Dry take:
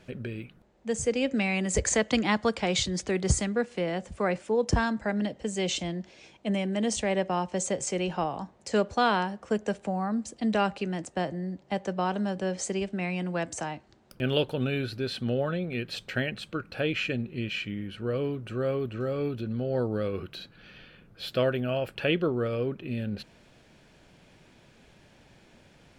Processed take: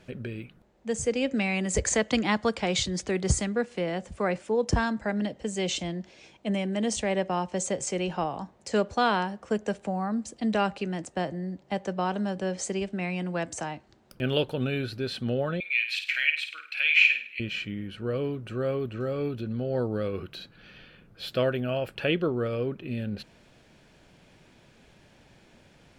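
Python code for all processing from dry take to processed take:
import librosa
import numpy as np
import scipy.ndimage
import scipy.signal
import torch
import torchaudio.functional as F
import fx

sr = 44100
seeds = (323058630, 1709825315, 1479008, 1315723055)

y = fx.chain(x, sr, fx.highpass_res(hz=2300.0, q=5.9),
    fx.room_flutter(wall_m=9.0, rt60_s=0.42), at=(15.6, 17.4))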